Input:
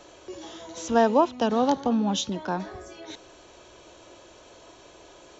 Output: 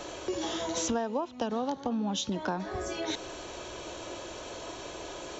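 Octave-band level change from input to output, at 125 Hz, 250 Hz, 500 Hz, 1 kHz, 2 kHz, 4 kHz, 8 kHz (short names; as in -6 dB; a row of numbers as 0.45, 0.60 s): -3.5 dB, -6.5 dB, -7.0 dB, -8.0 dB, -2.5 dB, -1.0 dB, n/a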